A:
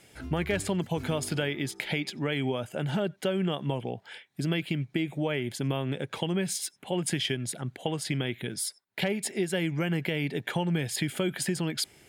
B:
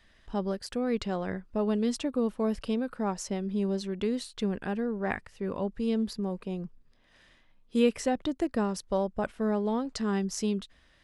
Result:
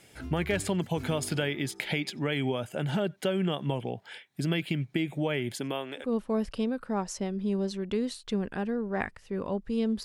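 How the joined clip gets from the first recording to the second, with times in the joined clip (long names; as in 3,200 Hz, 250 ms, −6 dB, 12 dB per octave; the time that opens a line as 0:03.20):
A
0:05.54–0:06.14: high-pass filter 180 Hz → 890 Hz
0:06.05: continue with B from 0:02.15, crossfade 0.18 s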